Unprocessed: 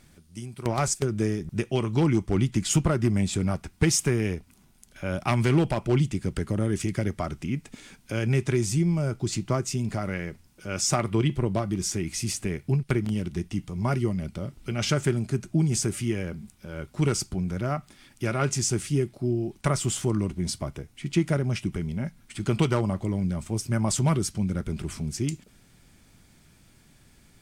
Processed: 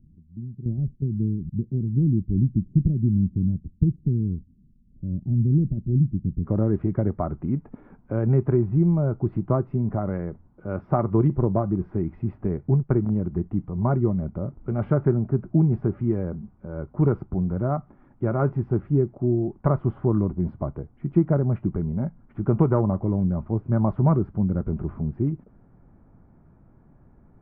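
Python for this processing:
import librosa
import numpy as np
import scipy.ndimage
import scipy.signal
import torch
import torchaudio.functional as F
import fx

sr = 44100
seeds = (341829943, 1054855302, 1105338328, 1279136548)

y = fx.cheby2_lowpass(x, sr, hz=fx.steps((0.0, 1500.0), (6.44, 6300.0)), order=4, stop_db=80)
y = y * 10.0 ** (4.0 / 20.0)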